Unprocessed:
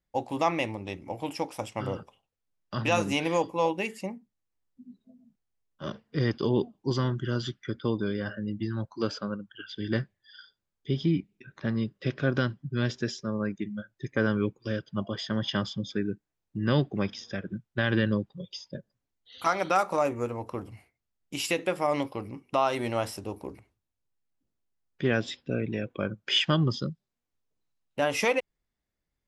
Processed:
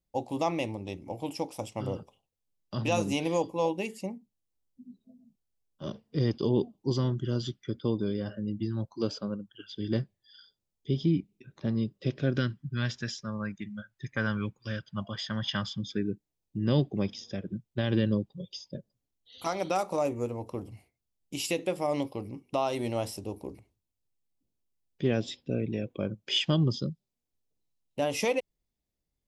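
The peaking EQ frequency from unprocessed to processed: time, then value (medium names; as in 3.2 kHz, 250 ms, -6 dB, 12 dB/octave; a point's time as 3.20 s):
peaking EQ -12.5 dB 1.2 oct
12.09 s 1.6 kHz
12.84 s 380 Hz
15.70 s 380 Hz
16.10 s 1.5 kHz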